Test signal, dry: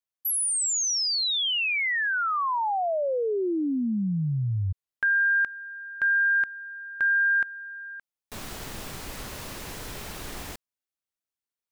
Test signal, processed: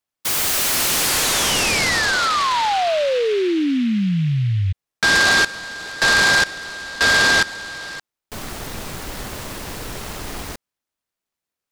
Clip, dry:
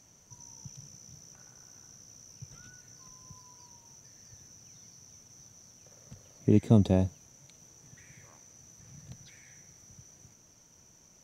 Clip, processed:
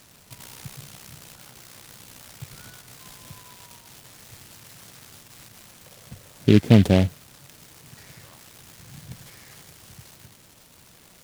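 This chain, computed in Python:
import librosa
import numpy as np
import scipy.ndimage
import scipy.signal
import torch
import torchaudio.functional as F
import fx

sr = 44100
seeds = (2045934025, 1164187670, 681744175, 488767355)

y = fx.noise_mod_delay(x, sr, seeds[0], noise_hz=2500.0, depth_ms=0.072)
y = y * librosa.db_to_amplitude(7.5)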